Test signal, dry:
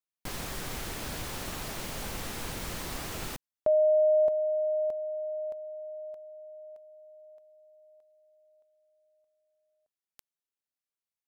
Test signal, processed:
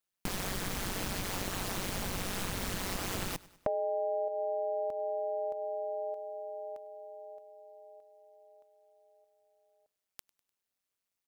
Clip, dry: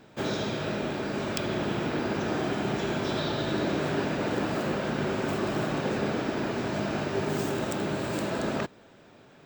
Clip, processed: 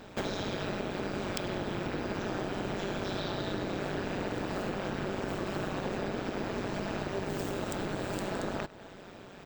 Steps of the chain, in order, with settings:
amplitude modulation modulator 190 Hz, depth 75%
on a send: repeating echo 100 ms, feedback 49%, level −24 dB
on the sum: downward compressor 6 to 1, threshold −40 dBFS
level +9 dB

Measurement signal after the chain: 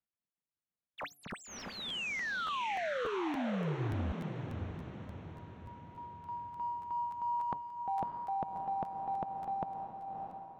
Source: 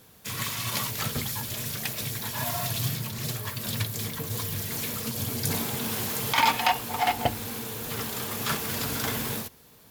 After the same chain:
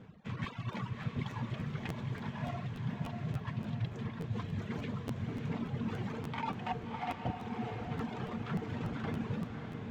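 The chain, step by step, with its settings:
running median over 9 samples
reverb reduction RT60 0.65 s
hum removal 143.1 Hz, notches 5
reverb reduction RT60 1.1 s
parametric band 170 Hz +10.5 dB 1.5 octaves
reversed playback
downward compressor 10 to 1, threshold −34 dBFS
reversed playback
high-frequency loss of the air 170 metres
on a send: feedback delay with all-pass diffusion 619 ms, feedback 51%, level −5 dB
on the sum: regular buffer underruns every 0.29 s, samples 512, repeat, from 0:00.43

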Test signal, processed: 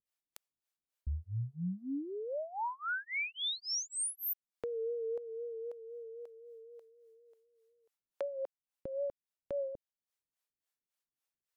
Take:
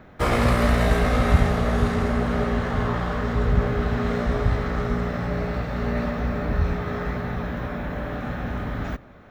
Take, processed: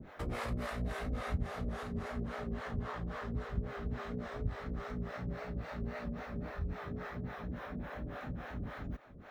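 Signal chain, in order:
downward compressor 2 to 1, threshold −44 dBFS
pitch vibrato 3.9 Hz 52 cents
two-band tremolo in antiphase 3.6 Hz, depth 100%, crossover 430 Hz
level +1.5 dB

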